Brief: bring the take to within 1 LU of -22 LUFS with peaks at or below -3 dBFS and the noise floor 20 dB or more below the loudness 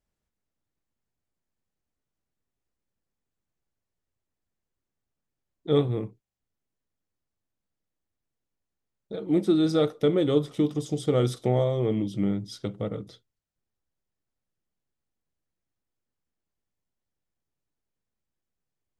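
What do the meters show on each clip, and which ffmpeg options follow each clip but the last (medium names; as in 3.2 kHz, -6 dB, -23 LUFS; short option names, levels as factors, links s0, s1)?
loudness -26.0 LUFS; peak level -9.5 dBFS; loudness target -22.0 LUFS
-> -af "volume=1.58"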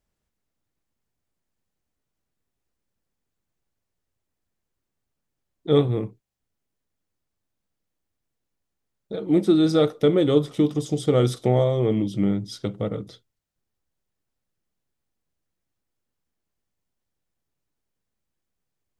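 loudness -22.0 LUFS; peak level -5.5 dBFS; noise floor -81 dBFS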